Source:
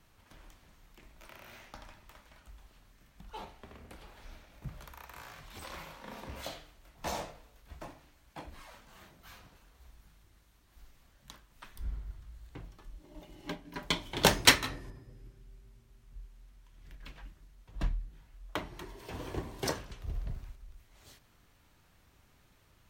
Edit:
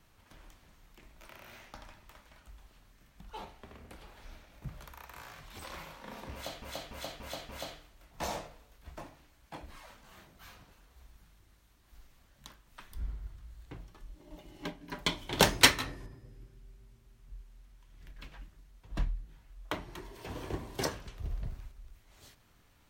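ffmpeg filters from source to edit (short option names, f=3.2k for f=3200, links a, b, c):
-filter_complex "[0:a]asplit=5[a][b][c][d][e];[a]atrim=end=6.622[f];[b]atrim=start=6.328:end=6.622[g];[c]atrim=start=6.328:end=6.622[h];[d]atrim=start=6.328:end=6.622[i];[e]atrim=start=6.328[j];[f][g]acrossfade=d=0.004:c1=hsin:c2=hsin[k];[k][h]acrossfade=d=0.004:c1=hsin:c2=hsin[l];[l][i]acrossfade=d=0.004:c1=hsin:c2=hsin[m];[m][j]acrossfade=d=0.004:c1=hsin:c2=hsin"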